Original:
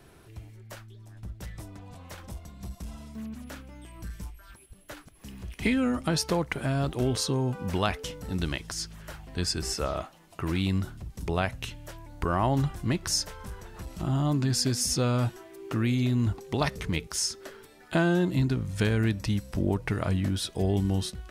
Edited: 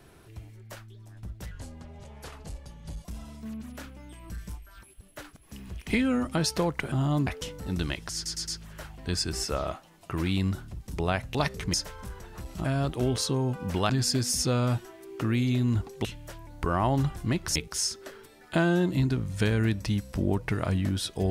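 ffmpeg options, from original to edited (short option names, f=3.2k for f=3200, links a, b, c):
-filter_complex "[0:a]asplit=14[a][b][c][d][e][f][g][h][i][j][k][l][m][n];[a]atrim=end=1.514[o];[b]atrim=start=1.51:end=2.77,asetpts=PTS-STARTPTS,asetrate=36162,aresample=44100,atrim=end_sample=67763,asetpts=PTS-STARTPTS[p];[c]atrim=start=2.766:end=6.642[q];[d]atrim=start=14.058:end=14.412[r];[e]atrim=start=7.888:end=8.882[s];[f]atrim=start=8.768:end=8.882[t];[g]atrim=start=8.768:end=8.882[u];[h]atrim=start=8.768:end=11.642[v];[i]atrim=start=16.558:end=16.952[w];[j]atrim=start=13.148:end=14.062[x];[k]atrim=start=6.638:end=7.892[y];[l]atrim=start=14.408:end=16.562[z];[m]atrim=start=11.638:end=13.152[aa];[n]atrim=start=16.948[ab];[o][p]acrossfade=d=0.004:c1=hsin:c2=hsin[ac];[ac][q]acrossfade=d=0.004:c1=hsin:c2=hsin[ad];[ad][r]acrossfade=d=0.004:c1=hsin:c2=hsin[ae];[ae][s]acrossfade=d=0.004:c1=hsin:c2=hsin[af];[af][t]acrossfade=d=0.004:c1=hsin:c2=hsin[ag];[ag][u]acrossfade=d=0.004:c1=hsin:c2=hsin[ah];[ah][v]acrossfade=d=0.004:c1=hsin:c2=hsin[ai];[ai][w]acrossfade=d=0.004:c1=hsin:c2=hsin[aj];[aj][x]acrossfade=d=0.004:c1=hsin:c2=hsin[ak];[ak][y]acrossfade=d=0.004:c1=hsin:c2=hsin[al];[al][z]acrossfade=d=0.004:c1=hsin:c2=hsin[am];[am][aa]acrossfade=d=0.004:c1=hsin:c2=hsin[an];[an][ab]acrossfade=d=0.004:c1=hsin:c2=hsin"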